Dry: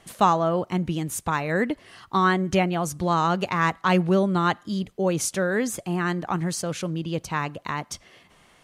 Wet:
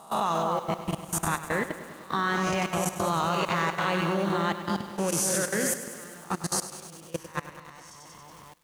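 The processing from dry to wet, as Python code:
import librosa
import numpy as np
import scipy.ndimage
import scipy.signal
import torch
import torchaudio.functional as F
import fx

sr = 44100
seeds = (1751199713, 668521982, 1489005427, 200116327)

y = fx.spec_swells(x, sr, rise_s=0.72)
y = fx.high_shelf(y, sr, hz=10000.0, db=7.5, at=(5.08, 7.29))
y = fx.dmg_crackle(y, sr, seeds[0], per_s=570.0, level_db=-40.0)
y = fx.high_shelf(y, sr, hz=4300.0, db=4.5)
y = fx.hum_notches(y, sr, base_hz=60, count=7)
y = fx.echo_split(y, sr, split_hz=1300.0, low_ms=242, high_ms=92, feedback_pct=52, wet_db=-4.5)
y = fx.level_steps(y, sr, step_db=22)
y = fx.echo_crushed(y, sr, ms=101, feedback_pct=80, bits=7, wet_db=-13.0)
y = y * librosa.db_to_amplitude(-4.5)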